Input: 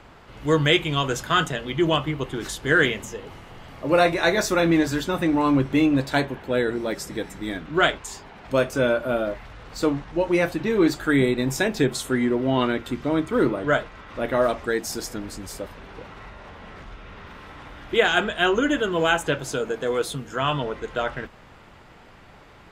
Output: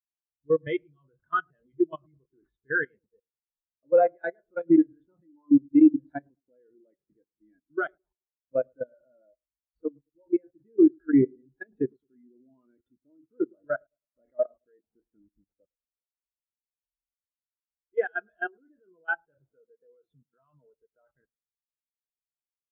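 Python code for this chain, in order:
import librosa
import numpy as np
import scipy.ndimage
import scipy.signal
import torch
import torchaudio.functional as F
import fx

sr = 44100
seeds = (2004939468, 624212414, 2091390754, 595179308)

p1 = fx.peak_eq(x, sr, hz=1900.0, db=3.0, octaves=1.7)
p2 = fx.level_steps(p1, sr, step_db=18)
p3 = scipy.signal.lfilter(np.full(7, 1.0 / 7), 1.0, p2)
p4 = p3 + fx.echo_filtered(p3, sr, ms=107, feedback_pct=52, hz=1000.0, wet_db=-15.0, dry=0)
p5 = fx.spectral_expand(p4, sr, expansion=2.5)
y = p5 * librosa.db_to_amplitude(-2.5)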